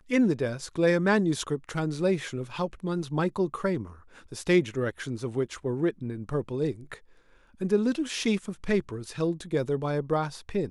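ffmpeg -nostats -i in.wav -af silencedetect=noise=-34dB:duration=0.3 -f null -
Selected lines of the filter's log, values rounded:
silence_start: 3.87
silence_end: 4.32 | silence_duration: 0.45
silence_start: 6.94
silence_end: 7.61 | silence_duration: 0.67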